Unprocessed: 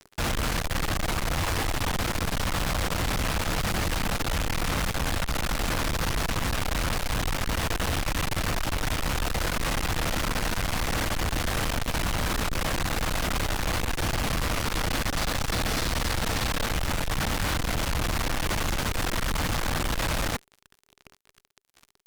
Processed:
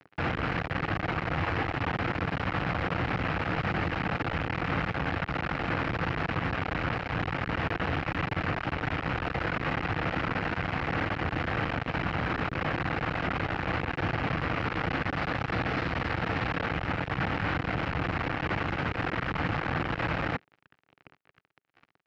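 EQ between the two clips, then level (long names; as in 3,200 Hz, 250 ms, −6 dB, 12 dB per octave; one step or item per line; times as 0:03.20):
high-frequency loss of the air 330 metres
loudspeaker in its box 120–6,600 Hz, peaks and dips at 220 Hz −7 dB, 400 Hz −4 dB, 600 Hz −5 dB, 1,000 Hz −5 dB, 3,500 Hz −7 dB, 6,100 Hz −6 dB
parametric band 4,600 Hz −5 dB 0.52 octaves
+4.0 dB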